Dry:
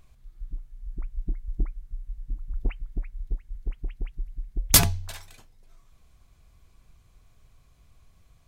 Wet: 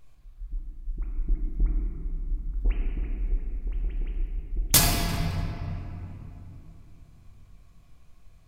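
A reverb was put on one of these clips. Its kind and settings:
rectangular room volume 160 cubic metres, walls hard, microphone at 0.53 metres
level −3 dB

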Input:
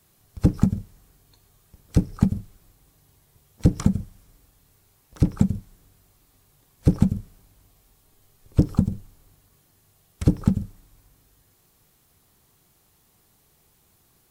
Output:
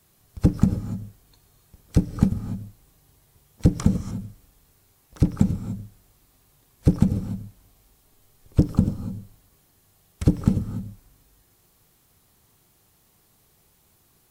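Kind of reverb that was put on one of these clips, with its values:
reverb whose tail is shaped and stops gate 320 ms rising, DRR 9 dB

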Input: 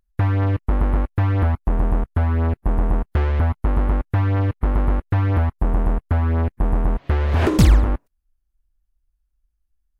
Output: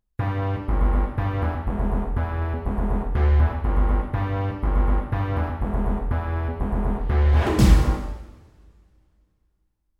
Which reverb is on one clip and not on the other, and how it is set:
coupled-rooms reverb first 0.97 s, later 2.8 s, from −24 dB, DRR −2 dB
level −6 dB

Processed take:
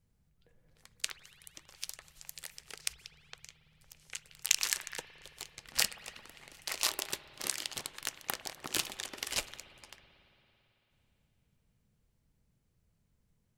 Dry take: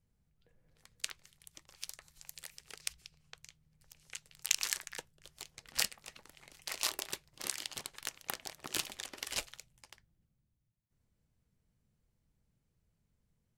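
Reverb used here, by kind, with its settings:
spring reverb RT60 3.5 s, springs 55 ms, chirp 60 ms, DRR 13.5 dB
level +3 dB

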